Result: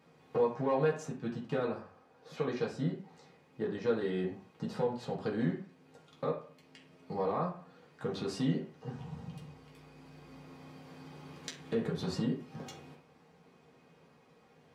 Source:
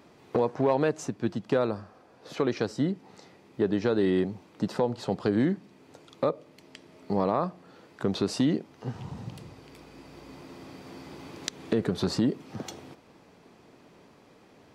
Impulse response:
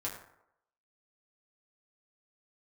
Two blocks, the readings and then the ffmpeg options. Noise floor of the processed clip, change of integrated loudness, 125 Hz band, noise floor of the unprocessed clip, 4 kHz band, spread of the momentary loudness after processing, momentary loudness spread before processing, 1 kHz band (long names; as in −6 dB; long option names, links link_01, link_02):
−63 dBFS, −6.5 dB, −5.0 dB, −57 dBFS, −8.5 dB, 20 LU, 20 LU, −5.5 dB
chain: -filter_complex "[1:a]atrim=start_sample=2205,asetrate=70560,aresample=44100[link_01];[0:a][link_01]afir=irnorm=-1:irlink=0,volume=-4.5dB"